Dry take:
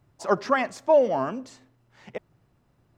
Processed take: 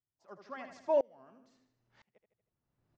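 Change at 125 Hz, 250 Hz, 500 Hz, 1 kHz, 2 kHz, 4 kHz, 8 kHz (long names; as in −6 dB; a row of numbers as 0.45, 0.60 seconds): below −25 dB, −17.5 dB, −12.0 dB, −16.5 dB, −21.0 dB, below −15 dB, can't be measured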